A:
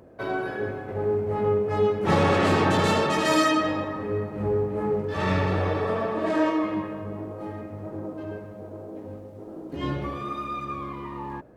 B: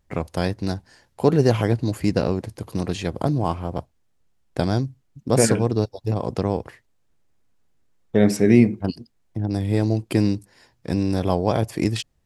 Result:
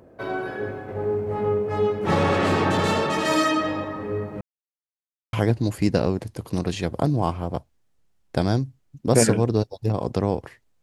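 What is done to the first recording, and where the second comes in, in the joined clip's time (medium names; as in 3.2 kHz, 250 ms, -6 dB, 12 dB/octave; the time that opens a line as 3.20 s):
A
4.41–5.33 s: mute
5.33 s: go over to B from 1.55 s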